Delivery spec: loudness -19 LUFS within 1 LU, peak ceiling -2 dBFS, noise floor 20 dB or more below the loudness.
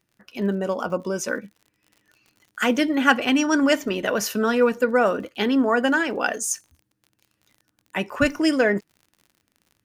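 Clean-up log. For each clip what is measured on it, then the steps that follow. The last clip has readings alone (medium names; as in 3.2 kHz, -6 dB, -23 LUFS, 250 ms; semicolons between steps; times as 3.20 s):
tick rate 50 per s; loudness -22.0 LUFS; peak level -2.0 dBFS; loudness target -19.0 LUFS
-> de-click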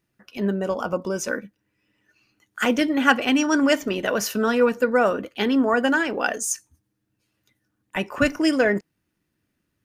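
tick rate 0 per s; loudness -22.5 LUFS; peak level -2.0 dBFS; loudness target -19.0 LUFS
-> trim +3.5 dB; peak limiter -2 dBFS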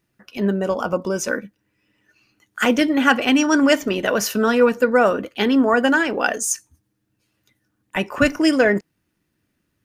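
loudness -19.0 LUFS; peak level -2.0 dBFS; noise floor -73 dBFS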